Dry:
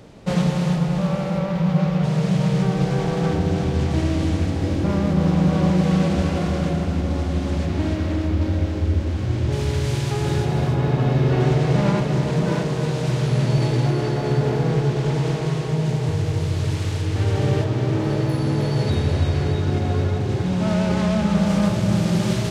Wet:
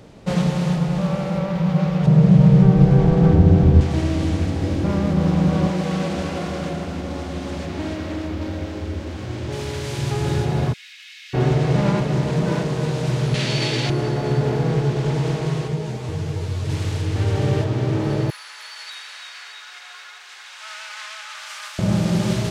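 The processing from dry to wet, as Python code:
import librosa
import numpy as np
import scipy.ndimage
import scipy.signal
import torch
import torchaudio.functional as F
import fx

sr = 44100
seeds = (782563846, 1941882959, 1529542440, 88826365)

y = fx.tilt_eq(x, sr, slope=-3.0, at=(2.06, 3.81))
y = fx.low_shelf(y, sr, hz=180.0, db=-11.0, at=(5.67, 9.99))
y = fx.steep_highpass(y, sr, hz=2100.0, slope=36, at=(10.72, 11.33), fade=0.02)
y = fx.weighting(y, sr, curve='D', at=(13.34, 13.9))
y = fx.ensemble(y, sr, at=(15.67, 16.68), fade=0.02)
y = fx.highpass(y, sr, hz=1300.0, slope=24, at=(18.3, 21.79))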